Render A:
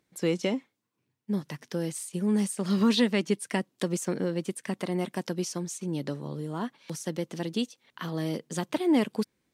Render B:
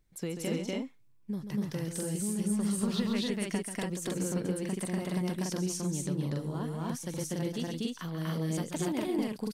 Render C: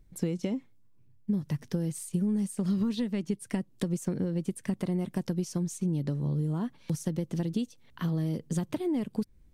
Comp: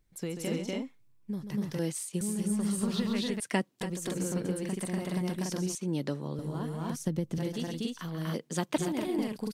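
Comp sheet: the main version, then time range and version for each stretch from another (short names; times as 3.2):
B
1.79–2.21 from A
3.4–3.81 from A
5.75–6.39 from A
6.96–7.38 from C
8.34–8.78 from A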